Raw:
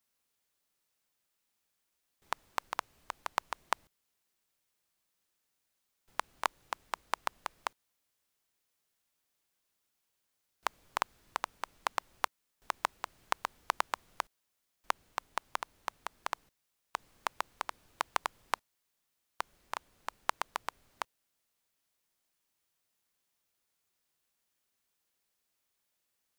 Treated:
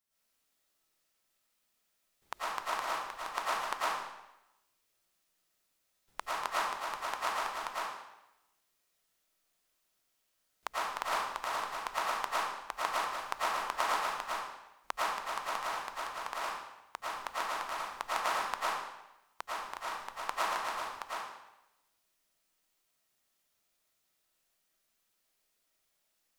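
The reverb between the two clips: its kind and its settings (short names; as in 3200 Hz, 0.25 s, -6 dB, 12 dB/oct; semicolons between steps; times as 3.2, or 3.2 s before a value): digital reverb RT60 0.91 s, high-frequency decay 0.95×, pre-delay 70 ms, DRR -9.5 dB; gain -6 dB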